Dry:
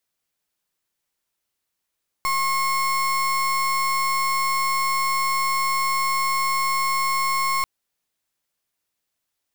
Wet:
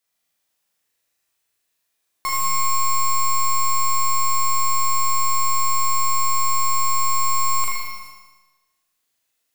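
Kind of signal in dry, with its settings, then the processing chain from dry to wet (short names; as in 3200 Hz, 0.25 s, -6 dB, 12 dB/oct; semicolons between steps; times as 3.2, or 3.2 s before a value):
pulse 1080 Hz, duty 33% -22 dBFS 5.39 s
low shelf 440 Hz -5.5 dB; on a send: flutter echo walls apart 6.6 m, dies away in 1.1 s; on the sum: non-linear reverb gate 0.49 s falling, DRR 2.5 dB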